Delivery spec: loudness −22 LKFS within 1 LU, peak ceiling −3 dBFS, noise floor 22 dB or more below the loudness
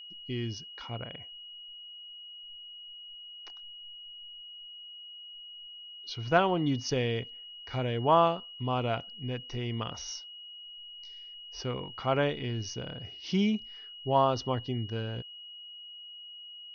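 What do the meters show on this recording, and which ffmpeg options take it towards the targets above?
interfering tone 2,900 Hz; level of the tone −44 dBFS; integrated loudness −31.5 LKFS; sample peak −11.0 dBFS; target loudness −22.0 LKFS
→ -af "bandreject=frequency=2900:width=30"
-af "volume=9.5dB,alimiter=limit=-3dB:level=0:latency=1"

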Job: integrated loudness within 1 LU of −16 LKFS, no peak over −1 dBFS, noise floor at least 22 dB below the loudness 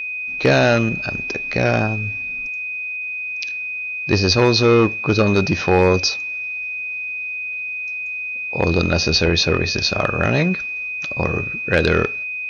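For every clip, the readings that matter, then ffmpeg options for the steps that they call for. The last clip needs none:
interfering tone 2,500 Hz; level of the tone −24 dBFS; integrated loudness −19.0 LKFS; sample peak −3.5 dBFS; target loudness −16.0 LKFS
→ -af "bandreject=frequency=2500:width=30"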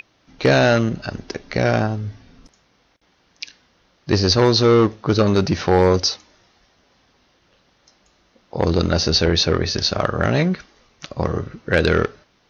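interfering tone none found; integrated loudness −18.5 LKFS; sample peak −4.5 dBFS; target loudness −16.0 LKFS
→ -af "volume=2.5dB"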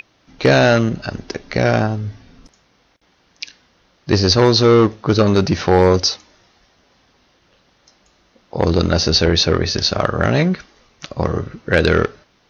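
integrated loudness −16.0 LKFS; sample peak −2.0 dBFS; background noise floor −59 dBFS

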